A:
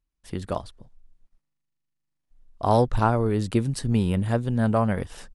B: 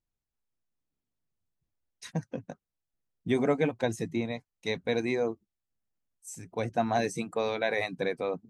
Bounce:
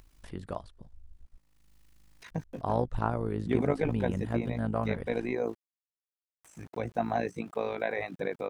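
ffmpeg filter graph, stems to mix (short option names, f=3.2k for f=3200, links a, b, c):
-filter_complex "[0:a]volume=-6dB[a];[1:a]aeval=exprs='val(0)*gte(abs(val(0)),0.00316)':c=same,adelay=200,volume=0.5dB[b];[a][b]amix=inputs=2:normalize=0,acompressor=mode=upward:threshold=-32dB:ratio=2.5,tremolo=f=53:d=0.71,acrossover=split=2800[c][d];[d]acompressor=threshold=-58dB:ratio=4:attack=1:release=60[e];[c][e]amix=inputs=2:normalize=0"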